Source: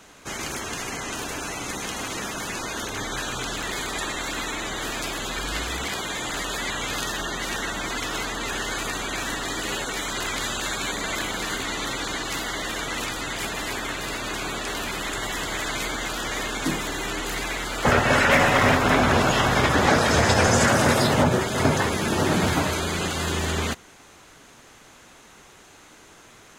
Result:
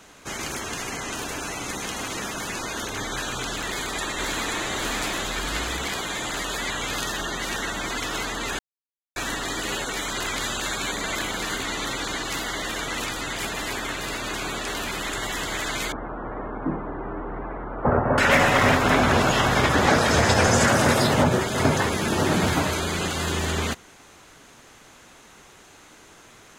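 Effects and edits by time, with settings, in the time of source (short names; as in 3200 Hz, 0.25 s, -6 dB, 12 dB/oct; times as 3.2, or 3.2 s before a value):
3.65–4.7 echo throw 0.53 s, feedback 55%, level -2.5 dB
8.59–9.16 mute
15.92–18.18 LPF 1200 Hz 24 dB/oct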